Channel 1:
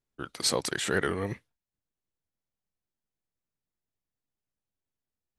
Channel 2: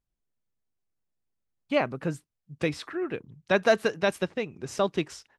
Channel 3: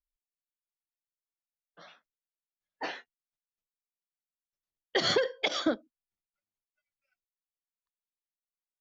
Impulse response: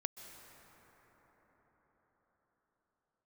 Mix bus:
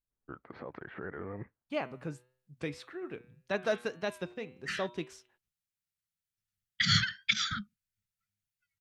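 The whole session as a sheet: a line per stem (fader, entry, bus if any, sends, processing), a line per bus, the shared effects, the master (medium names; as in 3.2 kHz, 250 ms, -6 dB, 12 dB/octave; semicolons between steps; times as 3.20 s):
-6.5 dB, 0.10 s, no send, inverse Chebyshev low-pass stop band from 9 kHz, stop band 80 dB; peak limiter -23.5 dBFS, peak gain reduction 9.5 dB
-9.5 dB, 0.00 s, no send, de-hum 123.9 Hz, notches 34
+3.0 dB, 1.85 s, no send, Chebyshev band-stop 210–1300 Hz, order 5; peaking EQ 100 Hz +13.5 dB 1.6 oct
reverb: none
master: vibrato 1.8 Hz 65 cents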